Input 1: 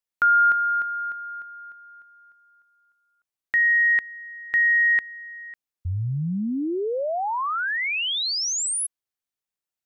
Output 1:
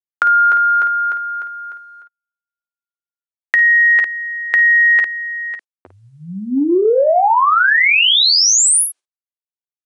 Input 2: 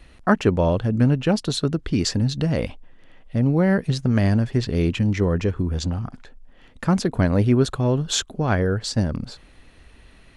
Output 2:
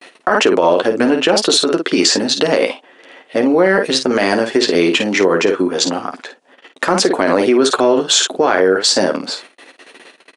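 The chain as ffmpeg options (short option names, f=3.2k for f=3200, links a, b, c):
-af "agate=range=-45dB:threshold=-46dB:ratio=16:release=113:detection=rms,highpass=f=330:w=0.5412,highpass=f=330:w=1.3066,aecho=1:1:11|53:0.473|0.355,acompressor=threshold=-31dB:ratio=3:attack=23:release=24:knee=1:detection=peak,aeval=exprs='0.355*(cos(1*acos(clip(val(0)/0.355,-1,1)))-cos(1*PI/2))+0.00316*(cos(2*acos(clip(val(0)/0.355,-1,1)))-cos(2*PI/2))':c=same,aresample=22050,aresample=44100,alimiter=level_in=17dB:limit=-1dB:release=50:level=0:latency=1,volume=-1dB"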